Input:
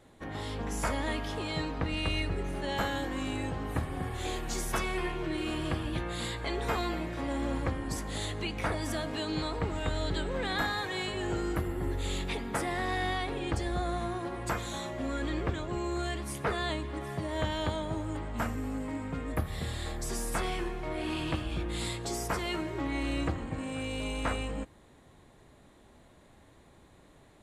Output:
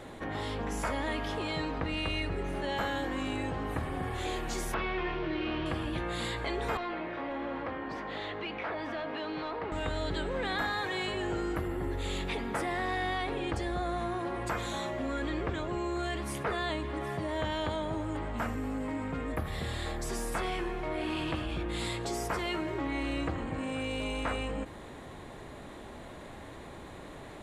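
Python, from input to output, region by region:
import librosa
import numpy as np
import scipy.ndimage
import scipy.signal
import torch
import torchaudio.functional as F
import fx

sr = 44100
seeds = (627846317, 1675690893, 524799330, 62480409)

y = fx.chain(x, sr, fx.delta_mod(bps=32000, step_db=-39.0),
    fx.lowpass(hz=3800.0, slope=24), at=(4.74, 5.66))
y = fx.chain(y, sr, fx.highpass(hz=530.0, slope=6),
    fx.clip_hard(threshold_db=-33.0),
    fx.air_absorb(metres=310.0), at=(6.77, 9.72))
y = fx.bass_treble(y, sr, bass_db=-4, treble_db=-6)
y = fx.env_flatten(y, sr, amount_pct=50)
y = y * 10.0 ** (-2.0 / 20.0)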